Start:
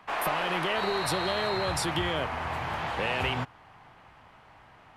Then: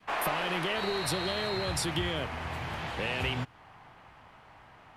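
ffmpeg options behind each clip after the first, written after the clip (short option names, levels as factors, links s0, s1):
-af "adynamicequalizer=threshold=0.00794:dfrequency=950:dqfactor=0.71:tfrequency=950:tqfactor=0.71:attack=5:release=100:ratio=0.375:range=3.5:mode=cutabove:tftype=bell"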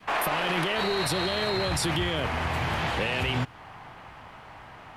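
-af "alimiter=level_in=1.41:limit=0.0631:level=0:latency=1:release=13,volume=0.708,volume=2.66"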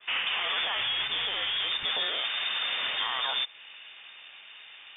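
-af "lowpass=f=3100:t=q:w=0.5098,lowpass=f=3100:t=q:w=0.6013,lowpass=f=3100:t=q:w=0.9,lowpass=f=3100:t=q:w=2.563,afreqshift=-3700,volume=0.75"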